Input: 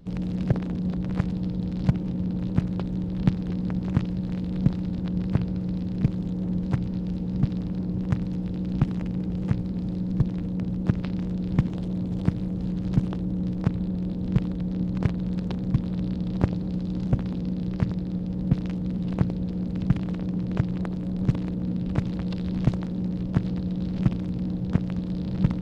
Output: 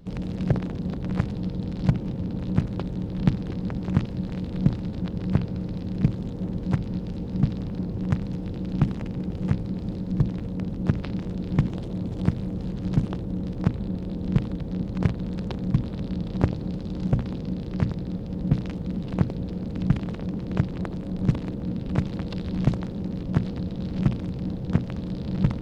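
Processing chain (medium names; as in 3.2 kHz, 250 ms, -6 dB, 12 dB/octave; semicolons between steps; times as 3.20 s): hum notches 60/120/180/240/300 Hz; trim +2 dB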